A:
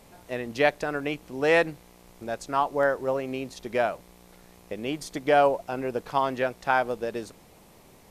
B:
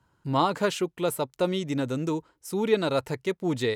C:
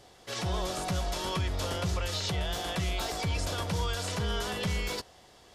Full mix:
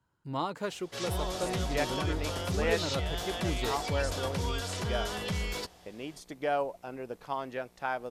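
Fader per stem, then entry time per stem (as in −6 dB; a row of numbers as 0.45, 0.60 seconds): −10.0, −9.5, −2.0 decibels; 1.15, 0.00, 0.65 seconds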